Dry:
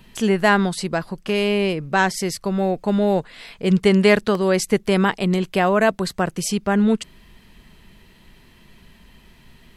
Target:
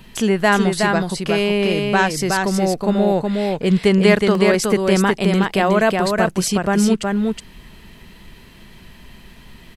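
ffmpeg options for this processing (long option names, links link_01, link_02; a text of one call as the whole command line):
ffmpeg -i in.wav -filter_complex "[0:a]asplit=2[link_01][link_02];[link_02]acompressor=threshold=-27dB:ratio=6,volume=0.5dB[link_03];[link_01][link_03]amix=inputs=2:normalize=0,aecho=1:1:368:0.668,volume=-1dB" out.wav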